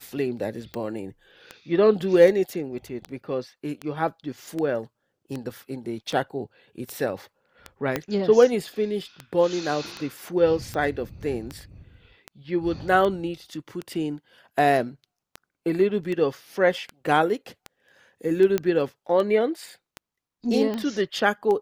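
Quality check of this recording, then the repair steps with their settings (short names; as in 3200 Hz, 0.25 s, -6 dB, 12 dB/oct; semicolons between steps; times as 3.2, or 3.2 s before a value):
tick 78 rpm -18 dBFS
7.96 pop -10 dBFS
18.58 pop -10 dBFS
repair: de-click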